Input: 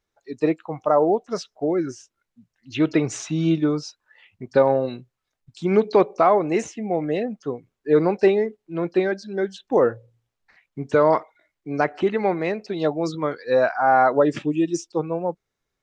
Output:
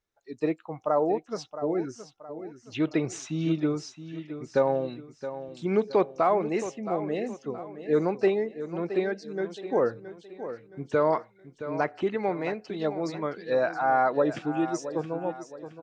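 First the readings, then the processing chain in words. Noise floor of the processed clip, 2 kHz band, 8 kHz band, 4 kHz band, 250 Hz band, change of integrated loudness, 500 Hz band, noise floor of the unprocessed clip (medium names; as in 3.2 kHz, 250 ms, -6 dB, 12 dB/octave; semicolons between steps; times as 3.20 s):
-61 dBFS, -6.0 dB, no reading, -6.0 dB, -6.0 dB, -6.5 dB, -6.0 dB, -82 dBFS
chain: feedback delay 670 ms, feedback 40%, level -12 dB; trim -6.5 dB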